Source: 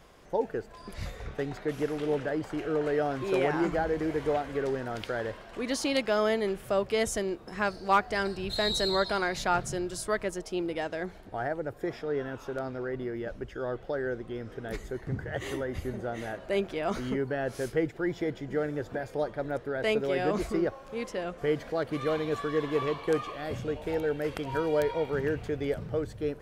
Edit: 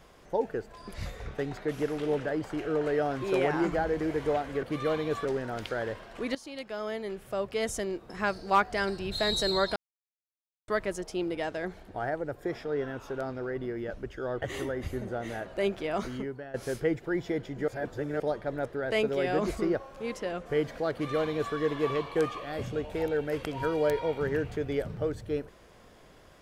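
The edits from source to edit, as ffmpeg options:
-filter_complex "[0:a]asplit=10[a][b][c][d][e][f][g][h][i][j];[a]atrim=end=4.632[k];[b]atrim=start=21.838:end=22.462[l];[c]atrim=start=4.628:end=5.73,asetpts=PTS-STARTPTS,afade=t=out:st=1.098:d=0.004:c=hsin:silence=0.141254[m];[d]atrim=start=5.73:end=9.14,asetpts=PTS-STARTPTS,afade=t=in:d=1.94:silence=0.141254,afade=t=out:st=3.406:d=0.004:c=hsin[n];[e]atrim=start=9.14:end=10.06,asetpts=PTS-STARTPTS,volume=0[o];[f]atrim=start=10.06:end=13.802,asetpts=PTS-STARTPTS,afade=t=in:d=0.004:c=hsin[p];[g]atrim=start=15.338:end=17.46,asetpts=PTS-STARTPTS,afade=t=out:st=1.482:d=0.64:silence=0.158489[q];[h]atrim=start=17.46:end=18.602,asetpts=PTS-STARTPTS,afade=t=in:d=0.004:c=hsin:silence=0.158489[r];[i]atrim=start=18.598:end=19.122,asetpts=PTS-STARTPTS,areverse[s];[j]atrim=start=19.118[t];[k][l]acrossfade=d=0.004:c1=hsin:c2=hsin[u];[m][n][o][p]concat=n=4:v=0:a=1[v];[u][v]acrossfade=d=0.004:c1=hsin:c2=hsin[w];[q][r]concat=n=2:v=0:a=1[x];[w][x]acrossfade=d=0.004:c1=hsin:c2=hsin[y];[y][s]acrossfade=d=0.004:c1=hsin:c2=hsin[z];[z][t]acrossfade=d=0.004:c1=hsin:c2=hsin"

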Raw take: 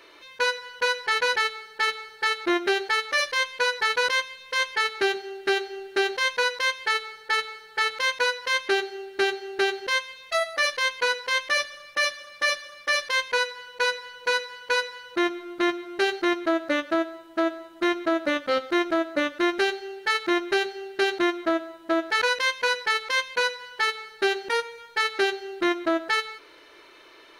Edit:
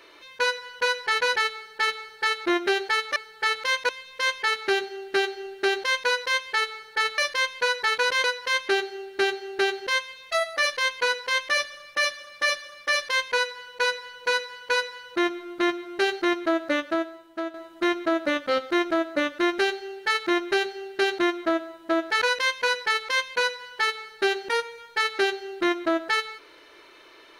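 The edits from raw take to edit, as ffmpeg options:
-filter_complex "[0:a]asplit=6[a][b][c][d][e][f];[a]atrim=end=3.162[g];[b]atrim=start=7.508:end=8.242[h];[c]atrim=start=4.218:end=7.512[i];[d]atrim=start=3.158:end=4.222[j];[e]atrim=start=8.238:end=17.54,asetpts=PTS-STARTPTS,afade=t=out:st=8.512:d=0.79:silence=0.354813[k];[f]atrim=start=17.54,asetpts=PTS-STARTPTS,afade=t=in:d=0.004:c=hsin:silence=0.354813[l];[g][h]acrossfade=d=0.004:c1=hsin:c2=hsin[m];[m][i]acrossfade=d=0.004:c1=hsin:c2=hsin[n];[n][j]acrossfade=d=0.004:c1=hsin:c2=hsin[o];[k][l]concat=n=2:v=0:a=1[p];[o][p]acrossfade=d=0.004:c1=hsin:c2=hsin"

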